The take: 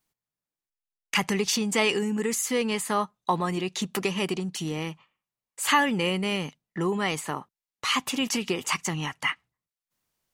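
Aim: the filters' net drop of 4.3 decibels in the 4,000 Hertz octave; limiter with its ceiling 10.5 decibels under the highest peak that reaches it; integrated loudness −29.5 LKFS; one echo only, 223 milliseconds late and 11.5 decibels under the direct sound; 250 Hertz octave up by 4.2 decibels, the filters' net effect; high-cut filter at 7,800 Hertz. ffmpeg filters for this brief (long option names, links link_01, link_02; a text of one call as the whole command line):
ffmpeg -i in.wav -af "lowpass=7800,equalizer=frequency=250:width_type=o:gain=5.5,equalizer=frequency=4000:width_type=o:gain=-6.5,alimiter=limit=-18.5dB:level=0:latency=1,aecho=1:1:223:0.266,volume=-1dB" out.wav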